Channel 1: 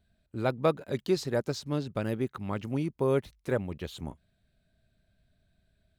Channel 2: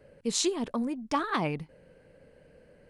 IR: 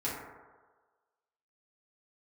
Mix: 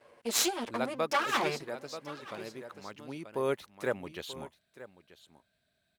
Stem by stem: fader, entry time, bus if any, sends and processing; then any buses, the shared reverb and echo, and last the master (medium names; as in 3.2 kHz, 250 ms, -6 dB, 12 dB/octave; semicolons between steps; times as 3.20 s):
+2.5 dB, 0.35 s, no send, echo send -16.5 dB, auto duck -9 dB, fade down 1.80 s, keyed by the second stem
+3.0 dB, 0.00 s, no send, echo send -18 dB, comb filter that takes the minimum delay 8.6 ms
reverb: none
echo: delay 934 ms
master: high-pass 700 Hz 6 dB/octave